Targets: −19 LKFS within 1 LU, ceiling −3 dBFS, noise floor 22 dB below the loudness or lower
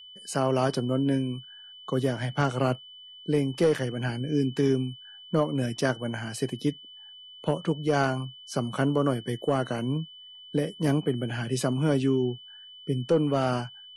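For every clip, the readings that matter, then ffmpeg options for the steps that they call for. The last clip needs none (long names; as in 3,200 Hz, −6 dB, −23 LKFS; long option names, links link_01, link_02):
interfering tone 3,000 Hz; level of the tone −45 dBFS; integrated loudness −28.0 LKFS; sample peak −12.5 dBFS; target loudness −19.0 LKFS
→ -af "bandreject=frequency=3000:width=30"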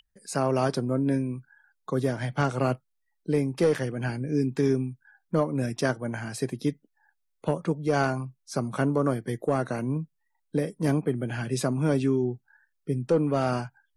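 interfering tone none found; integrated loudness −28.0 LKFS; sample peak −12.5 dBFS; target loudness −19.0 LKFS
→ -af "volume=9dB"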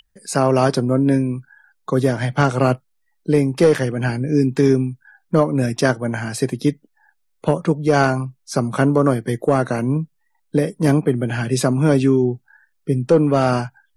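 integrated loudness −19.0 LKFS; sample peak −3.5 dBFS; background noise floor −67 dBFS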